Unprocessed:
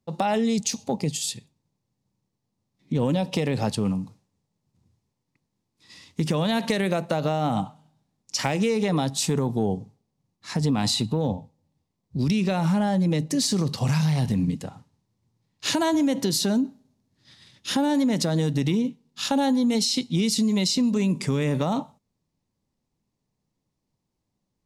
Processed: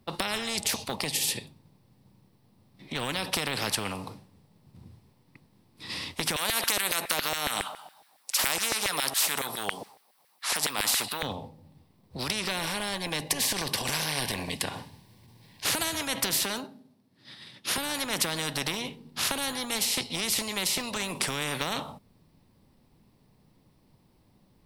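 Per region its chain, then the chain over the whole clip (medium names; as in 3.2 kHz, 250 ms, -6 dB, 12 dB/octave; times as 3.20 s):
6.36–11.23 s: treble shelf 5.5 kHz +12 dB + LFO high-pass saw down 7.2 Hz 600–2000 Hz
12.48–15.65 s: transient shaper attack -11 dB, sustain 0 dB + Butterworth band-stop 1.3 kHz, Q 5 + tape noise reduction on one side only encoder only
16.43–17.78 s: high-pass 170 Hz + upward expansion, over -39 dBFS
whole clip: peaking EQ 6.7 kHz -14.5 dB 0.45 oct; spectrum-flattening compressor 4:1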